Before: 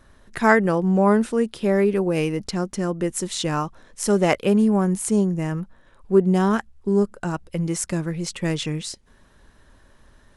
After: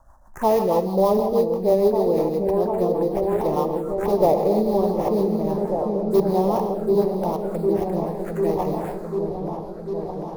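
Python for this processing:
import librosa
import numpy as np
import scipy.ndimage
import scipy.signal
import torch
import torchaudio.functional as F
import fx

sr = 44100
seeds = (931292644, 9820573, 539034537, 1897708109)

p1 = fx.sample_hold(x, sr, seeds[0], rate_hz=4400.0, jitter_pct=20)
p2 = fx.peak_eq(p1, sr, hz=180.0, db=-10.0, octaves=2.4)
p3 = fx.rev_gated(p2, sr, seeds[1], gate_ms=320, shape='flat', drr_db=7.0)
p4 = fx.rotary_switch(p3, sr, hz=6.3, then_hz=0.7, switch_at_s=6.04)
p5 = (np.mod(10.0 ** (16.5 / 20.0) * p4 + 1.0, 2.0) - 1.0) / 10.0 ** (16.5 / 20.0)
p6 = p4 + (p5 * 10.0 ** (-5.0 / 20.0))
p7 = fx.env_phaser(p6, sr, low_hz=390.0, high_hz=1500.0, full_db=-24.5)
p8 = fx.curve_eq(p7, sr, hz=(230.0, 880.0, 3000.0, 6700.0), db=(0, 11, -21, -6))
y = p8 + fx.echo_opening(p8, sr, ms=747, hz=400, octaves=1, feedback_pct=70, wet_db=-3, dry=0)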